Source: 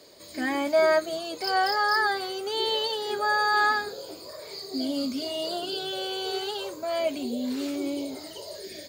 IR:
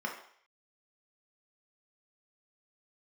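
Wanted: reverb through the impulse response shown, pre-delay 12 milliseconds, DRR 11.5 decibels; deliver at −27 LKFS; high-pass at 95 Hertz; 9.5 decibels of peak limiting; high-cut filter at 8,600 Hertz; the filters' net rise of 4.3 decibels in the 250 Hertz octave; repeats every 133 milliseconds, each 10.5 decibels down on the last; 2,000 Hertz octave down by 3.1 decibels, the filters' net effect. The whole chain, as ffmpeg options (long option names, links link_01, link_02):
-filter_complex "[0:a]highpass=95,lowpass=8600,equalizer=frequency=250:width_type=o:gain=5,equalizer=frequency=2000:width_type=o:gain=-4,alimiter=limit=-22dB:level=0:latency=1,aecho=1:1:133|266|399:0.299|0.0896|0.0269,asplit=2[link_01][link_02];[1:a]atrim=start_sample=2205,adelay=12[link_03];[link_02][link_03]afir=irnorm=-1:irlink=0,volume=-16.5dB[link_04];[link_01][link_04]amix=inputs=2:normalize=0,volume=3dB"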